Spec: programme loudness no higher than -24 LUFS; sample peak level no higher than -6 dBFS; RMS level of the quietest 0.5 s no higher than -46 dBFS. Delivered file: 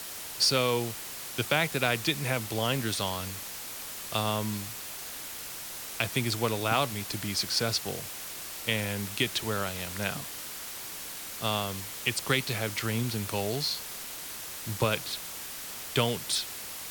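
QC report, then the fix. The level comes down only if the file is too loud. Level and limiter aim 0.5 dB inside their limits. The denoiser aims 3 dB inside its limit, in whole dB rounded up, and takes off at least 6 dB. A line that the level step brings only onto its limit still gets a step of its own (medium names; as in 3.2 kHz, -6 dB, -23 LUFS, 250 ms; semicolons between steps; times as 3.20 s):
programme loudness -30.5 LUFS: pass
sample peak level -11.0 dBFS: pass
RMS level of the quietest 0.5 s -40 dBFS: fail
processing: noise reduction 9 dB, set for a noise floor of -40 dBFS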